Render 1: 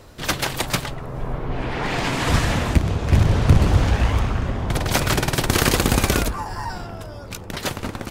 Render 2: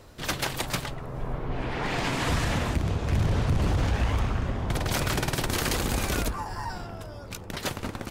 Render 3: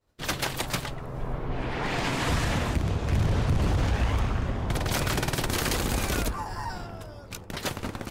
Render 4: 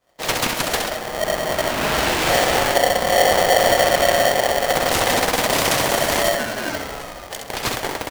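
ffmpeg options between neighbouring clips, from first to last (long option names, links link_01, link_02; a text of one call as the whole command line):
ffmpeg -i in.wav -af "alimiter=limit=-11.5dB:level=0:latency=1:release=27,volume=-5dB" out.wav
ffmpeg -i in.wav -af "agate=range=-33dB:threshold=-36dB:ratio=3:detection=peak" out.wav
ffmpeg -i in.wav -af "aecho=1:1:66|132|198|264:0.596|0.197|0.0649|0.0214,aeval=exprs='val(0)*sgn(sin(2*PI*630*n/s))':channel_layout=same,volume=7dB" out.wav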